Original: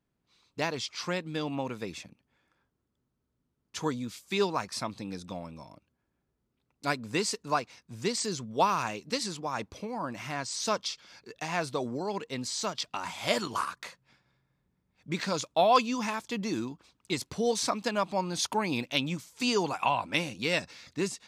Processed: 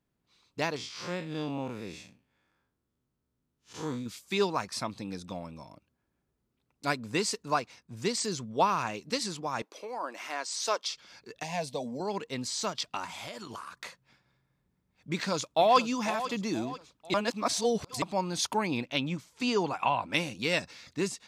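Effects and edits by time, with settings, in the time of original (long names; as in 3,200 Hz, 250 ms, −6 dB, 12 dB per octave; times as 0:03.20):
0:00.76–0:04.06: spectrum smeared in time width 114 ms
0:06.86–0:07.97: one half of a high-frequency compander decoder only
0:08.50–0:08.94: high-shelf EQ 4,500 Hz −5.5 dB
0:09.62–0:10.92: high-pass filter 350 Hz 24 dB per octave
0:11.43–0:12.00: phaser with its sweep stopped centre 350 Hz, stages 6
0:13.04–0:13.82: downward compressor 16 to 1, threshold −37 dBFS
0:15.10–0:15.79: delay throw 490 ms, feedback 45%, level −12.5 dB
0:17.14–0:18.02: reverse
0:18.67–0:20.10: high-shelf EQ 5,600 Hz −11.5 dB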